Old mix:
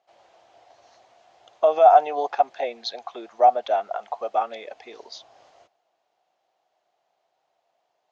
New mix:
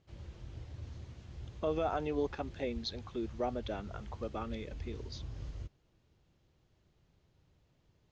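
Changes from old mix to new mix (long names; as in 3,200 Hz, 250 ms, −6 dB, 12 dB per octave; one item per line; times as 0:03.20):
speech −8.5 dB
master: remove high-pass with resonance 710 Hz, resonance Q 7.2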